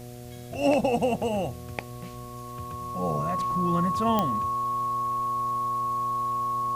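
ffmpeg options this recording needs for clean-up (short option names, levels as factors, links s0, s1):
-af "adeclick=t=4,bandreject=f=121.5:t=h:w=4,bandreject=f=243:t=h:w=4,bandreject=f=364.5:t=h:w=4,bandreject=f=486:t=h:w=4,bandreject=f=607.5:t=h:w=4,bandreject=f=729:t=h:w=4,bandreject=f=1100:w=30,afwtdn=0.0025"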